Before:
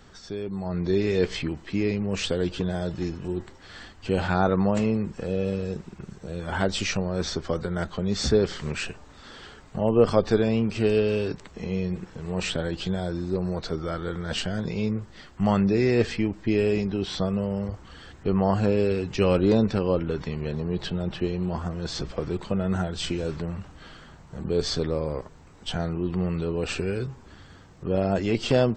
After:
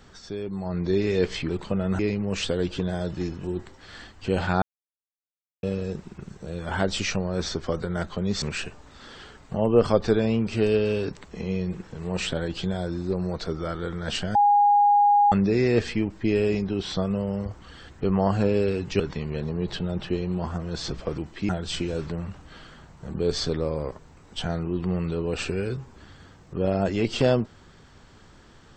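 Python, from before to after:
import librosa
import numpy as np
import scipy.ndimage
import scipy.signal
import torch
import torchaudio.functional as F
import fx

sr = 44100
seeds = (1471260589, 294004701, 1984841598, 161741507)

y = fx.edit(x, sr, fx.swap(start_s=1.49, length_s=0.31, other_s=22.29, other_length_s=0.5),
    fx.silence(start_s=4.43, length_s=1.01),
    fx.cut(start_s=8.23, length_s=0.42),
    fx.bleep(start_s=14.58, length_s=0.97, hz=820.0, db=-14.5),
    fx.cut(start_s=19.23, length_s=0.88), tone=tone)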